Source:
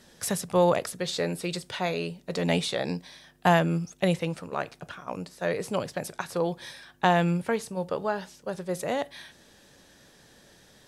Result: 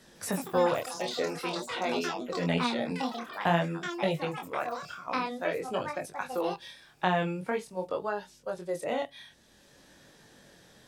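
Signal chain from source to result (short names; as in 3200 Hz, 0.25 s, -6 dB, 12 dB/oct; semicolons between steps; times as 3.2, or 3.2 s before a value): spectral noise reduction 9 dB; echoes that change speed 0.156 s, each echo +6 st, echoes 3, each echo -6 dB; chorus 0.49 Hz, delay 19.5 ms, depth 7.8 ms; three-band squash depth 40%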